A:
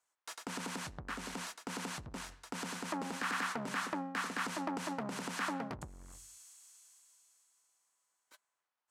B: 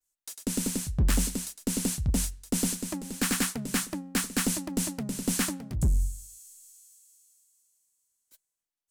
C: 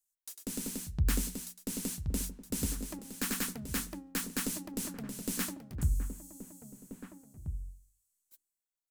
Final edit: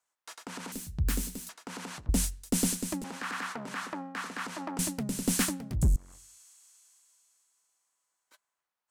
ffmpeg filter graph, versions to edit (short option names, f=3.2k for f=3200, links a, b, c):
-filter_complex "[1:a]asplit=2[a][b];[0:a]asplit=4[c][d][e][f];[c]atrim=end=0.722[g];[2:a]atrim=start=0.718:end=1.492[h];[d]atrim=start=1.488:end=2.092[i];[a]atrim=start=2.088:end=3.042[j];[e]atrim=start=3.038:end=4.792[k];[b]atrim=start=4.788:end=5.962[l];[f]atrim=start=5.958[m];[g][h]acrossfade=d=0.004:c1=hsin:c2=hsin[n];[n][i]acrossfade=d=0.004:c1=hsin:c2=hsin[o];[o][j]acrossfade=d=0.004:c1=hsin:c2=hsin[p];[p][k]acrossfade=d=0.004:c1=hsin:c2=hsin[q];[q][l]acrossfade=d=0.004:c1=hsin:c2=hsin[r];[r][m]acrossfade=d=0.004:c1=hsin:c2=hsin"